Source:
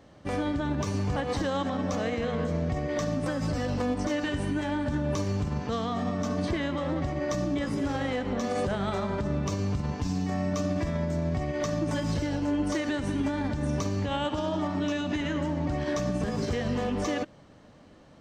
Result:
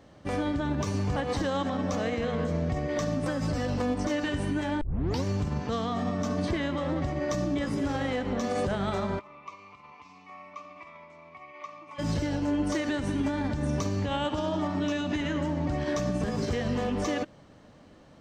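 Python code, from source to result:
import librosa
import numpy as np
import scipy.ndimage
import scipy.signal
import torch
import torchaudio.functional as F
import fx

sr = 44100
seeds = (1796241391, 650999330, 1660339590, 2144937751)

y = fx.double_bandpass(x, sr, hz=1600.0, octaves=1.0, at=(9.18, 11.98), fade=0.02)
y = fx.edit(y, sr, fx.tape_start(start_s=4.81, length_s=0.43), tone=tone)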